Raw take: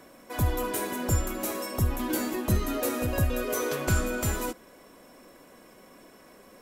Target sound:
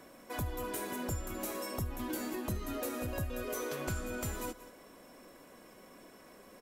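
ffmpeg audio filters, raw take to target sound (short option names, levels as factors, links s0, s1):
-filter_complex "[0:a]asplit=2[s0][s1];[s1]aecho=0:1:181:0.106[s2];[s0][s2]amix=inputs=2:normalize=0,acompressor=threshold=0.0224:ratio=3,volume=0.708"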